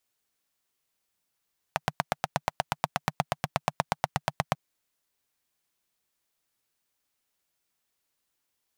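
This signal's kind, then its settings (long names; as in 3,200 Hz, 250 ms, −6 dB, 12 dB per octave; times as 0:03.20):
pulse-train model of a single-cylinder engine, steady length 2.79 s, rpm 1,000, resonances 150/760 Hz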